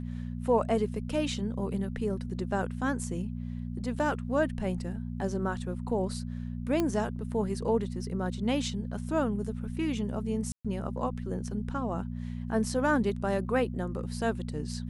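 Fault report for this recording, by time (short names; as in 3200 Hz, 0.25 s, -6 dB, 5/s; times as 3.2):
hum 60 Hz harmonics 4 -36 dBFS
6.8 pop -15 dBFS
10.52–10.65 gap 0.126 s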